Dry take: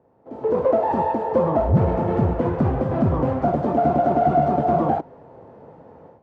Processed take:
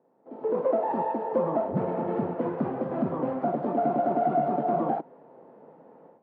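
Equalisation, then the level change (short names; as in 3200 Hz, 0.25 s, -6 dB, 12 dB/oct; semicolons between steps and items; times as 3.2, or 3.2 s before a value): HPF 180 Hz 24 dB/oct; air absorption 250 m; -5.5 dB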